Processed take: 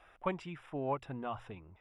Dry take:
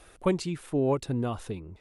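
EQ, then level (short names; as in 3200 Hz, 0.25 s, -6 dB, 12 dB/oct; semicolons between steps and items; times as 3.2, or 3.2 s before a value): polynomial smoothing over 25 samples; resonant low shelf 560 Hz -7.5 dB, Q 1.5; notches 60/120 Hz; -4.0 dB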